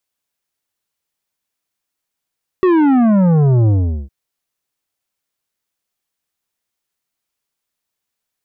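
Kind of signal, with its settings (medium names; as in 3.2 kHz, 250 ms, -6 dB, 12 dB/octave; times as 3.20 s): sub drop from 380 Hz, over 1.46 s, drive 10.5 dB, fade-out 0.41 s, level -10 dB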